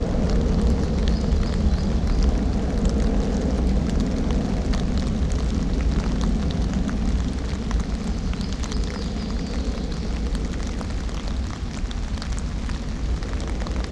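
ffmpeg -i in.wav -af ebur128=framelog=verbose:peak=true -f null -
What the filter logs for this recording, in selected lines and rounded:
Integrated loudness:
  I:         -25.1 LUFS
  Threshold: -35.1 LUFS
Loudness range:
  LRA:         5.8 LU
  Threshold: -45.2 LUFS
  LRA low:   -28.8 LUFS
  LRA high:  -23.0 LUFS
True peak:
  Peak:       -6.2 dBFS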